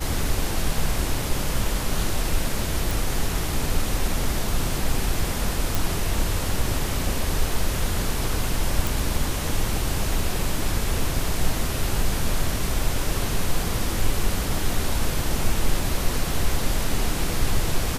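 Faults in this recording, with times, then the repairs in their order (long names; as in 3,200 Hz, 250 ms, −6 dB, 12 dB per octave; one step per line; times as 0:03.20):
0:02.91: click
0:05.75: click
0:08.87: click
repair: click removal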